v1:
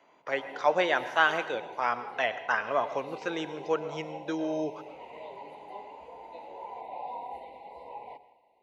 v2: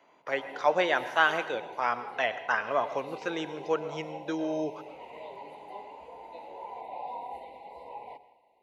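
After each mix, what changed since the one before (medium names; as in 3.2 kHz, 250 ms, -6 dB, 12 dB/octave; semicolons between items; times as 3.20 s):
background: add treble shelf 6.9 kHz +5.5 dB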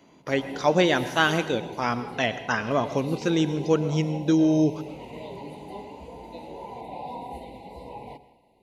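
master: remove three-band isolator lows -21 dB, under 500 Hz, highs -13 dB, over 2.6 kHz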